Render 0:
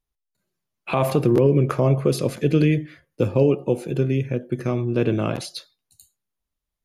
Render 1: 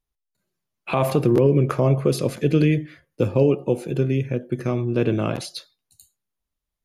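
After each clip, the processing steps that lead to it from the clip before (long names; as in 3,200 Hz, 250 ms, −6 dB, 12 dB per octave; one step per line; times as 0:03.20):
no processing that can be heard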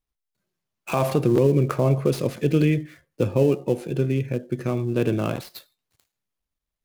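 gap after every zero crossing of 0.079 ms
level −1.5 dB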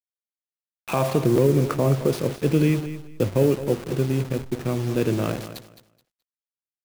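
hold until the input has moved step −31 dBFS
repeating echo 213 ms, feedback 21%, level −12.5 dB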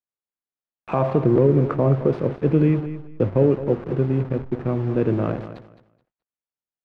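low-pass filter 1,500 Hz 12 dB per octave
level +2 dB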